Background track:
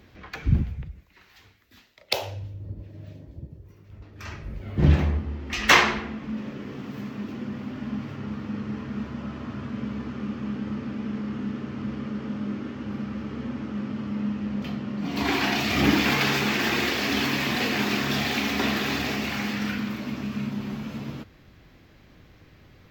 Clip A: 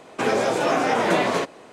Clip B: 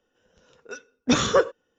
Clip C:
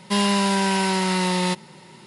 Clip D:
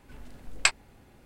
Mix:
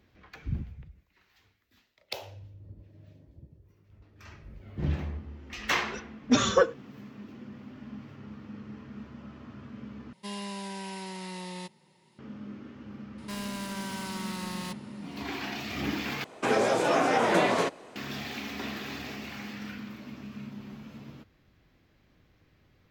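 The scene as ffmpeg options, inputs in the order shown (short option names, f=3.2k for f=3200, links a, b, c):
-filter_complex "[3:a]asplit=2[a][b];[0:a]volume=-11.5dB[c];[2:a]asplit=2[d][e];[e]adelay=4.4,afreqshift=-1.9[f];[d][f]amix=inputs=2:normalize=1[g];[a]equalizer=f=1.4k:t=o:w=0.26:g=-8[h];[b]asoftclip=type=hard:threshold=-27.5dB[i];[c]asplit=3[j][k][l];[j]atrim=end=10.134[m];[h]atrim=end=2.06,asetpts=PTS-STARTPTS,volume=-17.5dB[n];[k]atrim=start=12.186:end=16.244[o];[1:a]atrim=end=1.72,asetpts=PTS-STARTPTS,volume=-3.5dB[p];[l]atrim=start=17.956[q];[g]atrim=end=1.78,asetpts=PTS-STARTPTS,volume=-0.5dB,afade=t=in:d=0.004:c=hsin,afade=t=out:st=1.776:d=0.004:c=hsin,adelay=5220[r];[i]atrim=end=2.06,asetpts=PTS-STARTPTS,volume=-8.5dB,afade=t=in:d=0.004:c=hsin,afade=t=out:st=2.056:d=0.004:c=hsin,adelay=13180[s];[m][n]acrossfade=d=0.004:c1=hsin:c2=hsin[t];[t][o]acrossfade=d=0.004:c1=hsin:c2=hsin[u];[u][p]acrossfade=d=0.004:c1=hsin:c2=hsin[v];[v][q]acrossfade=d=0.004:c1=hsin:c2=hsin[w];[w][r][s]amix=inputs=3:normalize=0"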